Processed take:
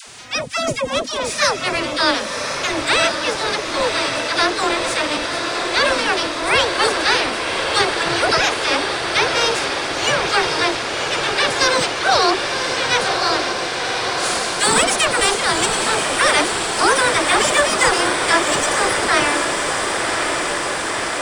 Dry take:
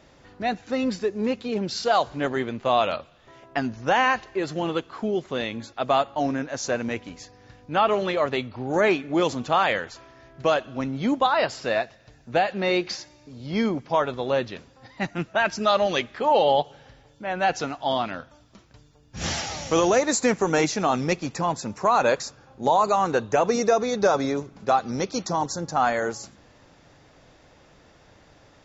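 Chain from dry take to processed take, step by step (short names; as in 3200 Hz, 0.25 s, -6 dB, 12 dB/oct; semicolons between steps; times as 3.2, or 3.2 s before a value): spectral limiter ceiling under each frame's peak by 24 dB; dynamic EQ 3200 Hz, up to -3 dB, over -32 dBFS, Q 1.2; upward compressor, threshold -34 dBFS; formant-preserving pitch shift +11 st; dispersion lows, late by 0.103 s, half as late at 510 Hz; on a send: diffused feedback echo 1.432 s, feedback 79%, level -5 dB; on the sum: speed mistake 33 rpm record played at 45 rpm; gain +6 dB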